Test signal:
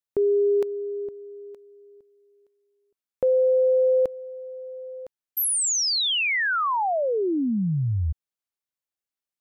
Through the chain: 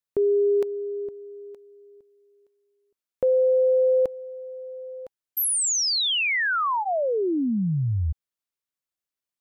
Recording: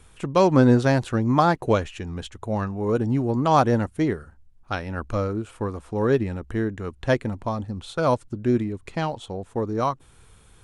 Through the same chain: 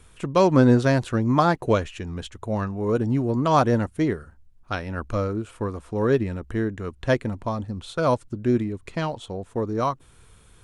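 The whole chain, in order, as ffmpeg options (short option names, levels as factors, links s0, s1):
-af "bandreject=f=810:w=12"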